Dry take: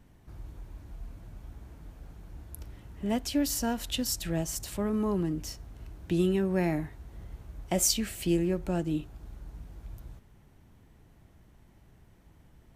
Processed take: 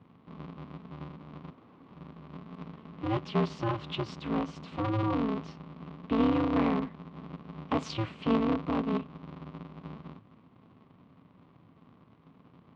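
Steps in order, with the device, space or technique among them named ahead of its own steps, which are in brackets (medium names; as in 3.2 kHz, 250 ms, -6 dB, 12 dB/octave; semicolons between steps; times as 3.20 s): 1.51–1.91 s: high-pass 140 Hz 24 dB/octave; 6.49–6.91 s: peaking EQ 68 Hz +4 dB 2.2 oct; ring modulator pedal into a guitar cabinet (polarity switched at an audio rate 110 Hz; cabinet simulation 110–3600 Hz, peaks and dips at 110 Hz +8 dB, 170 Hz +5 dB, 260 Hz +8 dB, 1.1 kHz +10 dB, 1.7 kHz -5 dB); trim -3 dB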